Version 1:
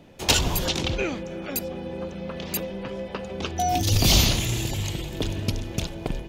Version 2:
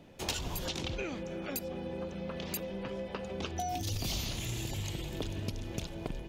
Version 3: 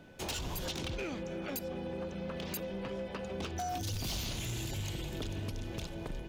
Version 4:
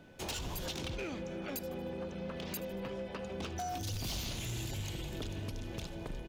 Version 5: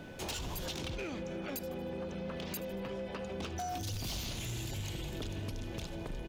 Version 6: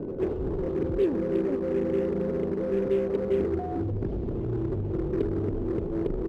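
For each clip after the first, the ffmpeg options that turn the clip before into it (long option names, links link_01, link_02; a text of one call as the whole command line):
ffmpeg -i in.wav -af "acompressor=threshold=-28dB:ratio=5,volume=-5dB" out.wav
ffmpeg -i in.wav -af "asoftclip=type=hard:threshold=-32.5dB,aeval=exprs='val(0)+0.000708*sin(2*PI*1500*n/s)':channel_layout=same" out.wav
ffmpeg -i in.wav -af "aecho=1:1:77|154|231|308:0.126|0.0667|0.0354|0.0187,volume=-1.5dB" out.wav
ffmpeg -i in.wav -af "alimiter=level_in=18dB:limit=-24dB:level=0:latency=1:release=244,volume=-18dB,volume=9dB" out.wav
ffmpeg -i in.wav -filter_complex "[0:a]lowpass=frequency=400:width_type=q:width=4.9,asplit=2[link_01][link_02];[link_02]aeval=exprs='0.0106*(abs(mod(val(0)/0.0106+3,4)-2)-1)':channel_layout=same,volume=-10dB[link_03];[link_01][link_03]amix=inputs=2:normalize=0,volume=7.5dB" out.wav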